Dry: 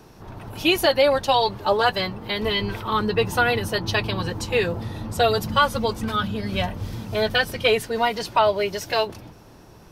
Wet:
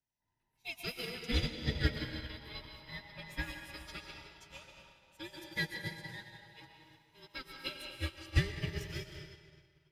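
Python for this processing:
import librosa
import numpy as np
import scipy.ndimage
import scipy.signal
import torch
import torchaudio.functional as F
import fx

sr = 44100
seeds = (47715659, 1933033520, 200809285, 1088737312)

y = fx.band_invert(x, sr, width_hz=1000)
y = fx.tone_stack(y, sr, knobs='6-0-2')
y = fx.rev_freeverb(y, sr, rt60_s=4.1, hf_ratio=0.8, predelay_ms=80, drr_db=-3.0)
y = fx.upward_expand(y, sr, threshold_db=-51.0, expansion=2.5)
y = y * 10.0 ** (7.5 / 20.0)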